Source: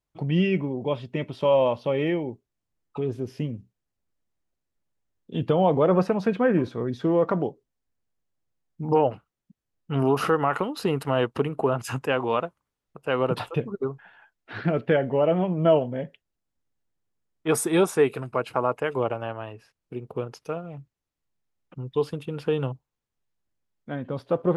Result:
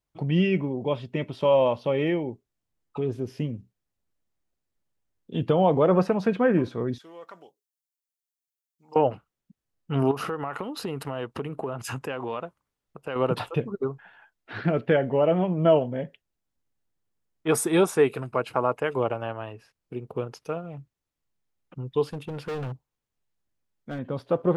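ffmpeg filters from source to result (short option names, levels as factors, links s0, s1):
-filter_complex "[0:a]asettb=1/sr,asplit=3[s0][s1][s2];[s0]atrim=end=6.984[s3];[s1]atrim=start=6.98:end=8.96,asetpts=PTS-STARTPTS,afade=t=in:d=0.004:c=qsin,afade=t=out:st=1.976:d=0.004:c=qsin,aderivative[s4];[s2]atrim=start=8.956[s5];[s3][s4]acrossfade=d=0.004:c1=hsin:c2=qsin[s6];[s6][s5]acrossfade=d=0.004:c1=qsin:c2=hsin,asettb=1/sr,asplit=3[s7][s8][s9];[s7]atrim=end=10.114[s10];[s8]atrim=start=10.11:end=13.16,asetpts=PTS-STARTPTS,afade=t=in:d=0.004:c=qsin,afade=t=out:st=3.046:d=0.004:c=qsin,acompressor=threshold=0.0355:ratio=3:attack=3.2:release=140:knee=1:detection=peak[s11];[s9]atrim=start=13.156[s12];[s10][s11]acrossfade=d=0.004:c1=hsin:c2=qsin[s13];[s13][s12]acrossfade=d=0.004:c1=qsin:c2=hsin,asettb=1/sr,asplit=3[s14][s15][s16];[s14]atrim=end=22.114[s17];[s15]atrim=start=22.11:end=23.99,asetpts=PTS-STARTPTS,afade=t=in:d=0.004:c=qsin,afade=t=out:st=1.876:d=0.004:c=qsin,asoftclip=type=hard:threshold=0.0355[s18];[s16]atrim=start=23.986[s19];[s17][s18]acrossfade=d=0.004:c1=hsin:c2=qsin[s20];[s20][s19]acrossfade=d=0.004:c1=qsin:c2=hsin"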